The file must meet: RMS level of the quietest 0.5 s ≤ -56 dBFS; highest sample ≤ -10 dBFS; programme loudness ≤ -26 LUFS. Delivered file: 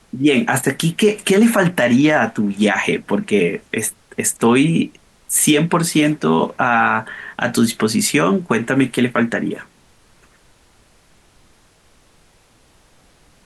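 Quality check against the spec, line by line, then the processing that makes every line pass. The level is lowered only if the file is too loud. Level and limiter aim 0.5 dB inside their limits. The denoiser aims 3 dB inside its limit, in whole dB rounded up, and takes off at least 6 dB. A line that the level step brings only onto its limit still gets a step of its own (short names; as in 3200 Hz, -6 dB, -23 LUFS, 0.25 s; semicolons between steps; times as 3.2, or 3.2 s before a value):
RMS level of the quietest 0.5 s -53 dBFS: fail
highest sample -4.5 dBFS: fail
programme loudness -16.5 LUFS: fail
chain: gain -10 dB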